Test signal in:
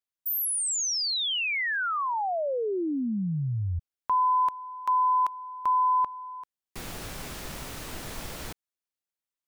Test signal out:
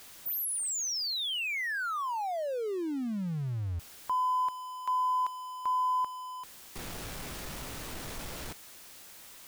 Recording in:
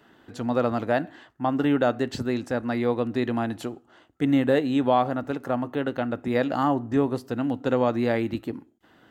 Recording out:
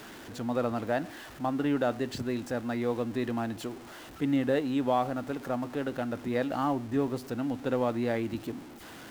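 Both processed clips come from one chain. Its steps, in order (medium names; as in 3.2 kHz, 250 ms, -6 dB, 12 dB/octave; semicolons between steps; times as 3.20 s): jump at every zero crossing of -35 dBFS; trim -6.5 dB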